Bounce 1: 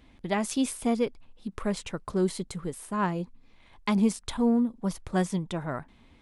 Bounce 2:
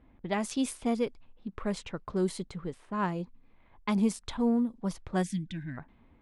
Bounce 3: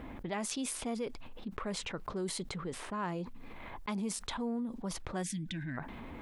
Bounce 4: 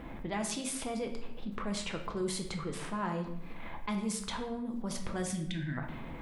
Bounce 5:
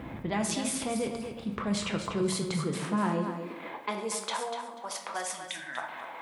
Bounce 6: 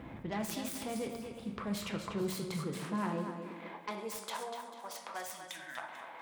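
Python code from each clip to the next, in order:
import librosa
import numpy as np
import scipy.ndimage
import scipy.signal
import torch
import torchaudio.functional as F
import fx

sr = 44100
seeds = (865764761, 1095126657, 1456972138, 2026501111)

y1 = fx.spec_box(x, sr, start_s=5.23, length_s=0.55, low_hz=340.0, high_hz=1500.0, gain_db=-25)
y1 = fx.env_lowpass(y1, sr, base_hz=1400.0, full_db=-23.0)
y1 = y1 * 10.0 ** (-3.0 / 20.0)
y2 = fx.low_shelf(y1, sr, hz=190.0, db=-7.5)
y2 = fx.env_flatten(y2, sr, amount_pct=70)
y2 = y2 * 10.0 ** (-8.5 / 20.0)
y3 = fx.room_shoebox(y2, sr, seeds[0], volume_m3=250.0, walls='mixed', distance_m=0.73)
y4 = fx.echo_feedback(y3, sr, ms=244, feedback_pct=21, wet_db=-9.0)
y4 = fx.filter_sweep_highpass(y4, sr, from_hz=89.0, to_hz=800.0, start_s=2.03, end_s=4.7, q=1.8)
y4 = y4 * 10.0 ** (4.0 / 20.0)
y5 = fx.self_delay(y4, sr, depth_ms=0.13)
y5 = y5 + 10.0 ** (-16.0 / 20.0) * np.pad(y5, (int(443 * sr / 1000.0), 0))[:len(y5)]
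y5 = y5 * 10.0 ** (-6.5 / 20.0)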